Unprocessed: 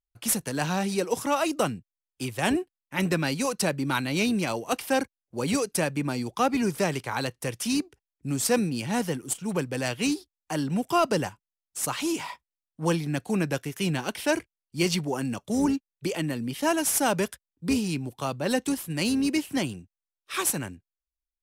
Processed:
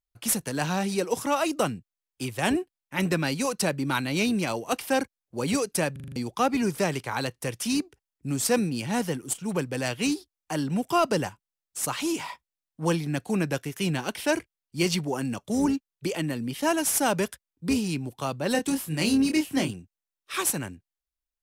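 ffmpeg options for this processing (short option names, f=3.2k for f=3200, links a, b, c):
-filter_complex "[0:a]asettb=1/sr,asplit=3[a][b][c];[a]atrim=end=18.524[d];[b]atrim=start=18.52:end=19.71,asetpts=PTS-STARTPTS,afade=t=in:d=0.004:c=qsin,afade=t=out:st=1.186:d=0.004:c=qsin,asplit=2[e][f];[f]adelay=26,volume=-4.5dB[g];[e][g]amix=inputs=2:normalize=0,atrim=end_sample=52479[h];[c]atrim=start=19.706[i];[d][h]acrossfade=d=0.004:c1=hsin:c2=qsin[j];[j][i]acrossfade=d=0.004:c1=qsin:c2=hsin,asplit=7[k][l][m][n][o][p][q];[k]atrim=end=5.962[r];[l]atrim=start=5.918:end=5.962[s];[m]atrim=start=5.918:end=5.962[t];[n]atrim=start=5.918:end=5.962[u];[o]atrim=start=5.918:end=5.962[v];[p]atrim=start=5.918:end=5.962[w];[q]atrim=start=6.158[x];[r][s]acrossfade=d=0.004:c1=hsin:c2=hsin[y];[y][t]acrossfade=d=0.004:c1=hsin:c2=hsin[z];[z][u]acrossfade=d=0.004:c1=hsin:c2=hsin[aa];[aa][v]acrossfade=d=0.004:c1=hsin:c2=hsin[ab];[ab][w]acrossfade=d=0.004:c1=hsin:c2=hsin[ac];[ac][x]acrossfade=d=0.004:c1=hsin:c2=hsin"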